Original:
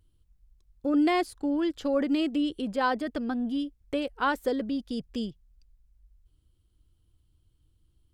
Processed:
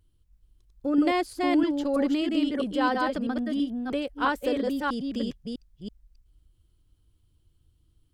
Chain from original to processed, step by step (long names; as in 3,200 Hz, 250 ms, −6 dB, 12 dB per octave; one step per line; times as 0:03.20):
delay that plays each chunk backwards 327 ms, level −2 dB